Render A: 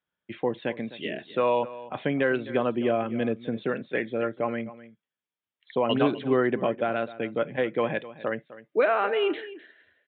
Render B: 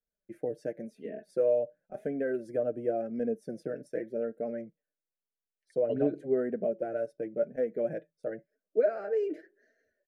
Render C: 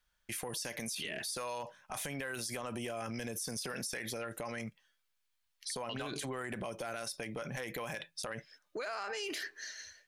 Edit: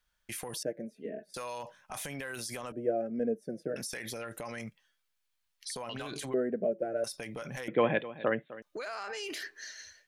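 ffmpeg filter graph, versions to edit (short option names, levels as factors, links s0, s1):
-filter_complex "[1:a]asplit=3[s0][s1][s2];[2:a]asplit=5[s3][s4][s5][s6][s7];[s3]atrim=end=0.632[s8];[s0]atrim=start=0.628:end=1.342[s9];[s4]atrim=start=1.338:end=2.722[s10];[s1]atrim=start=2.718:end=3.762[s11];[s5]atrim=start=3.758:end=6.342[s12];[s2]atrim=start=6.338:end=7.042[s13];[s6]atrim=start=7.038:end=7.682[s14];[0:a]atrim=start=7.678:end=8.622[s15];[s7]atrim=start=8.618[s16];[s8][s9]acrossfade=d=0.004:c1=hsin:c2=hsin[s17];[s17][s10]acrossfade=d=0.004:c1=hsin:c2=hsin[s18];[s18][s11]acrossfade=d=0.004:c1=hsin:c2=hsin[s19];[s19][s12]acrossfade=d=0.004:c1=hsin:c2=hsin[s20];[s20][s13]acrossfade=d=0.004:c1=hsin:c2=hsin[s21];[s21][s14]acrossfade=d=0.004:c1=hsin:c2=hsin[s22];[s22][s15]acrossfade=d=0.004:c1=hsin:c2=hsin[s23];[s23][s16]acrossfade=d=0.004:c1=hsin:c2=hsin"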